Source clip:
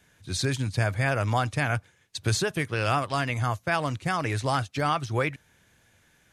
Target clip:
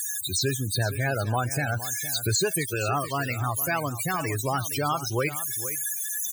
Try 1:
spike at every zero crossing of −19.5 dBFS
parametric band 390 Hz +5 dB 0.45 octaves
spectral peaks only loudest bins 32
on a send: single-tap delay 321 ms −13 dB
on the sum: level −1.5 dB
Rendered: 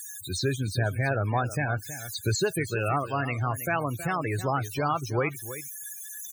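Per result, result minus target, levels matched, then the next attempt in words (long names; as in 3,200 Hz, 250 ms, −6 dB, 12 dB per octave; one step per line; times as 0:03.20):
echo 143 ms early; spike at every zero crossing: distortion −9 dB
spike at every zero crossing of −19.5 dBFS
parametric band 390 Hz +5 dB 0.45 octaves
spectral peaks only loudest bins 32
on a send: single-tap delay 464 ms −13 dB
on the sum: level −1.5 dB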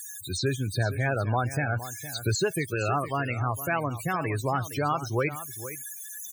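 spike at every zero crossing: distortion −9 dB
spike at every zero crossing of −10 dBFS
parametric band 390 Hz +5 dB 0.45 octaves
spectral peaks only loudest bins 32
on a send: single-tap delay 464 ms −13 dB
on the sum: level −1.5 dB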